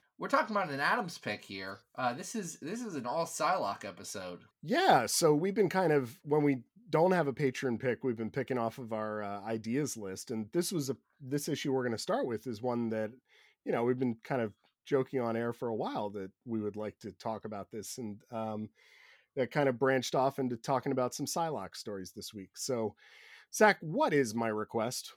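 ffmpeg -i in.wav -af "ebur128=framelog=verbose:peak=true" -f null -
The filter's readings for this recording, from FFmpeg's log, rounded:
Integrated loudness:
  I:         -33.3 LUFS
  Threshold: -43.6 LUFS
Loudness range:
  LRA:         6.5 LU
  Threshold: -53.8 LUFS
  LRA low:   -36.8 LUFS
  LRA high:  -30.3 LUFS
True peak:
  Peak:      -12.3 dBFS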